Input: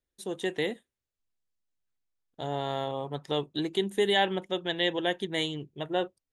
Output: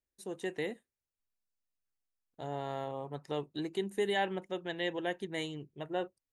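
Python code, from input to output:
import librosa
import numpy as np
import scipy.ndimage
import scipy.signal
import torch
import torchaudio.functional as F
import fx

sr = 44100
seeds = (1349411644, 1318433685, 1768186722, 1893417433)

y = fx.peak_eq(x, sr, hz=3400.0, db=-12.5, octaves=0.23)
y = F.gain(torch.from_numpy(y), -6.0).numpy()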